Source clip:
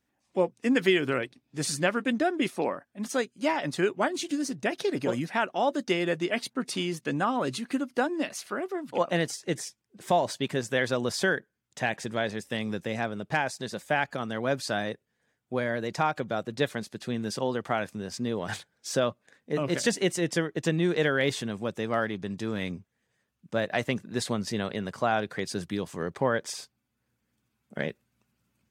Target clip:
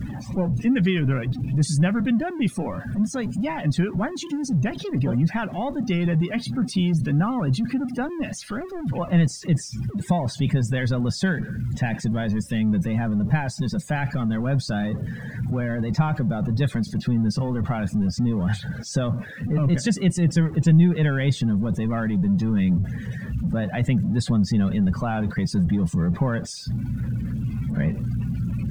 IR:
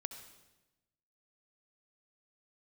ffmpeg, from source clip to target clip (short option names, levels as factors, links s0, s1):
-af "aeval=exprs='val(0)+0.5*0.0473*sgn(val(0))':c=same,afftdn=nr=21:nf=-32,lowshelf=f=250:t=q:w=1.5:g=13,volume=0.668"